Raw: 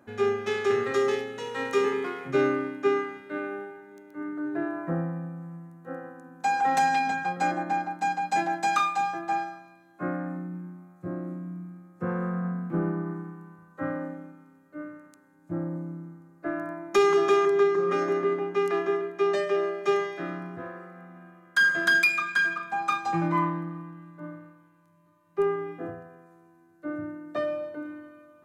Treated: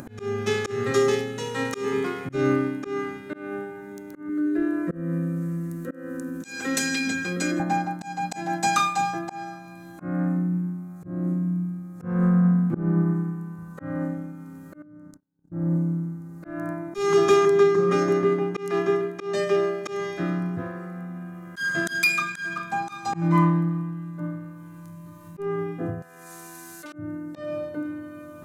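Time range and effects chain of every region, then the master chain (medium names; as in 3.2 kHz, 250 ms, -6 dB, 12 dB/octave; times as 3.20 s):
4.29–7.60 s: static phaser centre 340 Hz, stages 4 + level flattener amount 50%
14.82–15.52 s: gate -55 dBFS, range -43 dB + FFT filter 220 Hz 0 dB, 1.6 kHz -11 dB, 2.5 kHz -21 dB, 5.3 kHz -11 dB, 9.5 kHz -17 dB + compression 2:1, threshold -57 dBFS
26.02–26.93 s: hard clipper -30 dBFS + band-pass filter 7.2 kHz, Q 0.56 + level flattener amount 70%
whole clip: tone controls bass +13 dB, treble +9 dB; upward compressor, threshold -33 dBFS; slow attack 228 ms; trim +2 dB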